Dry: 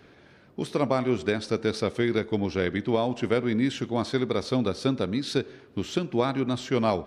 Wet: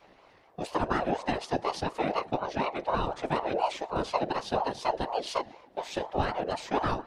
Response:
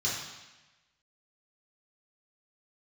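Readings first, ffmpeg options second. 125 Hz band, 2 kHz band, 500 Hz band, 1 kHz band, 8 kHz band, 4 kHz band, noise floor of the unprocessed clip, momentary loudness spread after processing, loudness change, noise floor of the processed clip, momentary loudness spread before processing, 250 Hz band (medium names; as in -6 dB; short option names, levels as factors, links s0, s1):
-8.0 dB, -3.0 dB, -5.0 dB, +4.5 dB, -4.0 dB, -4.5 dB, -55 dBFS, 6 LU, -4.0 dB, -59 dBFS, 5 LU, -9.5 dB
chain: -af "afreqshift=-150,afftfilt=real='hypot(re,im)*cos(2*PI*random(0))':imag='hypot(re,im)*sin(2*PI*random(1))':win_size=512:overlap=0.75,aeval=exprs='val(0)*sin(2*PI*630*n/s+630*0.3/4.1*sin(2*PI*4.1*n/s))':c=same,volume=1.78"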